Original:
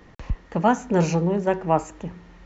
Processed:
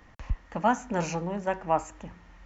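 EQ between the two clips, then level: fifteen-band graphic EQ 160 Hz -9 dB, 400 Hz -11 dB, 4 kHz -4 dB; -2.5 dB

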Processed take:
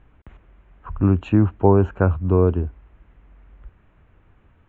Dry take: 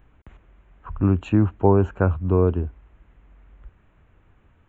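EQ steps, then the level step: distance through air 85 m; +2.0 dB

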